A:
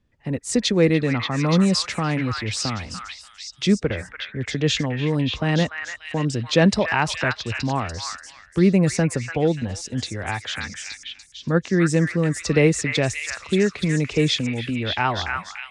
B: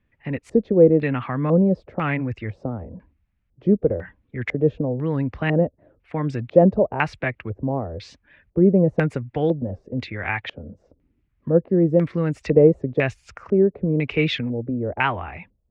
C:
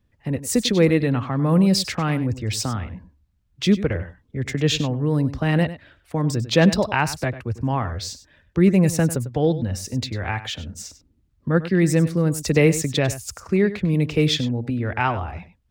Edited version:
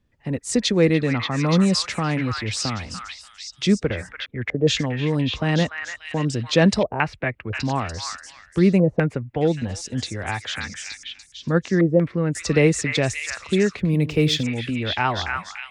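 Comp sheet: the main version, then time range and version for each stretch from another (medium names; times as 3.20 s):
A
4.26–4.67 s: from B
6.83–7.53 s: from B
8.80–9.41 s: from B
11.81–12.35 s: from B
13.79–14.43 s: from C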